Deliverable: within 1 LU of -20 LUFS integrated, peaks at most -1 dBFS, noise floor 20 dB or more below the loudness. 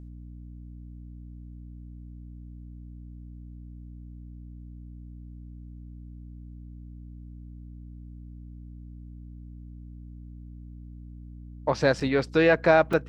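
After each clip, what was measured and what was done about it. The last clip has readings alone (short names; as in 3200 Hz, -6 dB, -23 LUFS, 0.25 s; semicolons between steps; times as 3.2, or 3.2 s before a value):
dropouts 2; longest dropout 4.5 ms; hum 60 Hz; harmonics up to 300 Hz; hum level -40 dBFS; loudness -23.0 LUFS; peak -6.5 dBFS; loudness target -20.0 LUFS
-> interpolate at 12/12.93, 4.5 ms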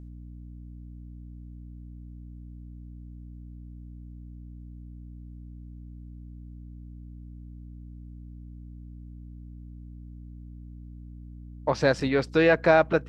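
dropouts 0; hum 60 Hz; harmonics up to 300 Hz; hum level -40 dBFS
-> notches 60/120/180/240/300 Hz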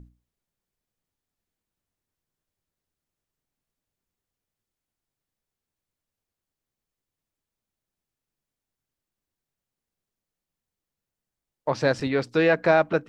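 hum none; loudness -22.5 LUFS; peak -6.5 dBFS; loudness target -20.0 LUFS
-> gain +2.5 dB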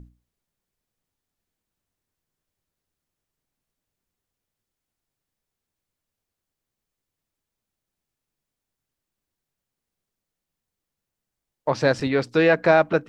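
loudness -20.0 LUFS; peak -4.0 dBFS; noise floor -86 dBFS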